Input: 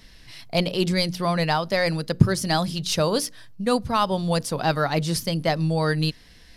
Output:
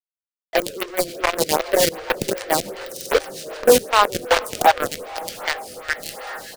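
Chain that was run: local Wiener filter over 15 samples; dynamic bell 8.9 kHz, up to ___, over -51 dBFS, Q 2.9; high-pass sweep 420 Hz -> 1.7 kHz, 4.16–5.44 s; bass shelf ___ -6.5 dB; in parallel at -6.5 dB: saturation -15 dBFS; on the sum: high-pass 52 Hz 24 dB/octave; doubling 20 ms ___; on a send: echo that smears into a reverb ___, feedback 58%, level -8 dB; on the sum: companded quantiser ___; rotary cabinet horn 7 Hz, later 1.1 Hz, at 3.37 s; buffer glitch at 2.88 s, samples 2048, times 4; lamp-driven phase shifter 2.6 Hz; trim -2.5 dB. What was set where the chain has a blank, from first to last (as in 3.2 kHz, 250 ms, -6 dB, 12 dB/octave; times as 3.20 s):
+6 dB, 300 Hz, -8 dB, 539 ms, 2-bit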